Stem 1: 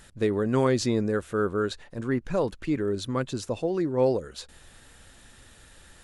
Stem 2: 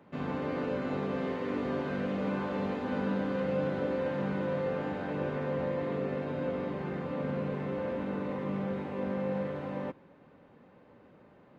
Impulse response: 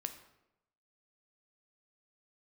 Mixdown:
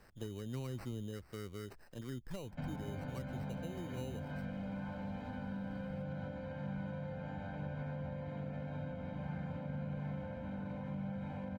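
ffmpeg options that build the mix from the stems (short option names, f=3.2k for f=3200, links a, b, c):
-filter_complex "[0:a]acrusher=samples=13:mix=1:aa=0.000001,volume=-10dB[a];[1:a]aecho=1:1:1.3:0.94,acompressor=threshold=-35dB:ratio=3,adelay=2450,volume=1.5dB[b];[a][b]amix=inputs=2:normalize=0,acrossover=split=160[c][d];[d]acompressor=threshold=-46dB:ratio=5[e];[c][e]amix=inputs=2:normalize=0"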